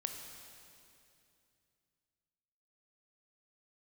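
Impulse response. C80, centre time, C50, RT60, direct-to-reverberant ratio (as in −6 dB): 6.0 dB, 60 ms, 5.0 dB, 2.6 s, 4.0 dB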